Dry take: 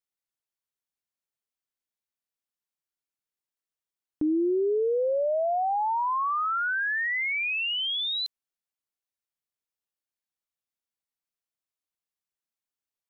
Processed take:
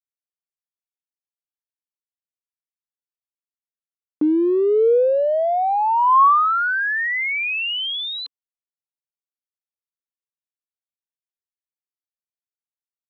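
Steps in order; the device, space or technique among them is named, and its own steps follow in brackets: blown loudspeaker (crossover distortion -52 dBFS; speaker cabinet 180–3600 Hz, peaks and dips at 280 Hz +4 dB, 470 Hz +5 dB, 1100 Hz +10 dB); gain +5.5 dB

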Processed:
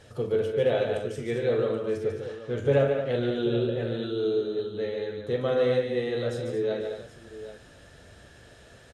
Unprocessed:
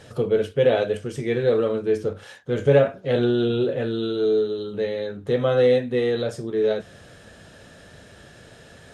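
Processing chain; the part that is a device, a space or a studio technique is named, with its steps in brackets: 2.04–2.58 air absorption 62 m; low shelf boost with a cut just above (low shelf 110 Hz +6 dB; bell 170 Hz -5 dB 0.84 oct); tapped delay 43/145/222/778 ms -11/-6/-9/-13.5 dB; gain -6.5 dB

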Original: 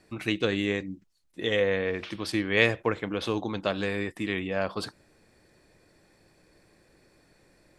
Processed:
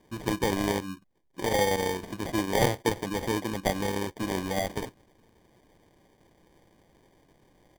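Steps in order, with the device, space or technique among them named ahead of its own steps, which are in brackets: crushed at another speed (playback speed 0.8×; sample-and-hold 41×; playback speed 1.25×)

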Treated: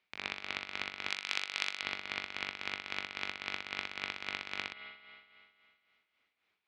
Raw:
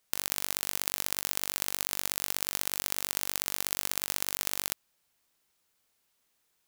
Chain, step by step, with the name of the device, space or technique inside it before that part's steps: 1.1–1.82 RIAA curve recording; combo amplifier with spring reverb and tremolo (spring tank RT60 2.5 s, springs 46 ms, chirp 30 ms, DRR 7.5 dB; tremolo 3.7 Hz, depth 63%; speaker cabinet 84–3900 Hz, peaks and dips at 140 Hz -9 dB, 540 Hz -5 dB, 2300 Hz +9 dB)

